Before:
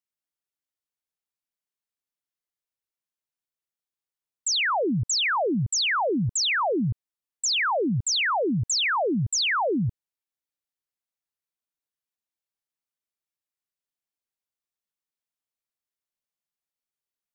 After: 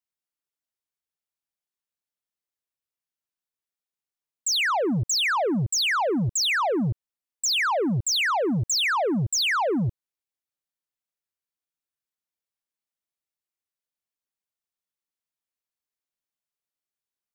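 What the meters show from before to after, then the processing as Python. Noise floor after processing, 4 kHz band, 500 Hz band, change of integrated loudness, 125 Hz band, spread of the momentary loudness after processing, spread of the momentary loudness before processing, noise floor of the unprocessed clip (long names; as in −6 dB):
below −85 dBFS, +0.5 dB, +0.5 dB, +0.5 dB, +0.5 dB, 5 LU, 5 LU, below −85 dBFS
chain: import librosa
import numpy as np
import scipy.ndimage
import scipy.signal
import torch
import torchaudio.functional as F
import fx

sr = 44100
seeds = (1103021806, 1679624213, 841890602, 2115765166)

y = fx.leveller(x, sr, passes=1)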